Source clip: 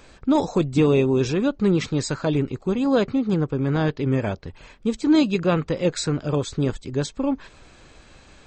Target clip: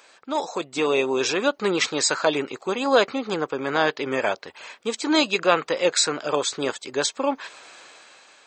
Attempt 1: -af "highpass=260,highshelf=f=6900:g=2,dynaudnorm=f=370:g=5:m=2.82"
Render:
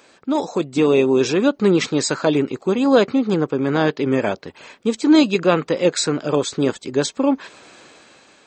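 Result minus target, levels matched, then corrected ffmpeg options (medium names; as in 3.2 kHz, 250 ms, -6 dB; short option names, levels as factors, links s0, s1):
250 Hz band +6.0 dB
-af "highpass=650,highshelf=f=6900:g=2,dynaudnorm=f=370:g=5:m=2.82"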